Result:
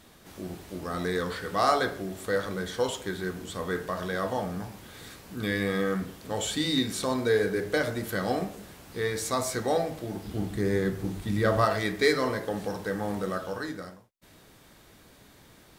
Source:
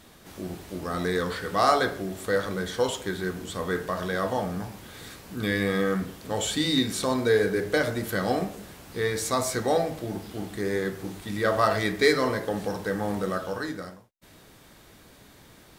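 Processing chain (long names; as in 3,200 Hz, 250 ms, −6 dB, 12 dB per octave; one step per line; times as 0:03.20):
0:10.25–0:11.65: low-shelf EQ 230 Hz +11.5 dB
level −2.5 dB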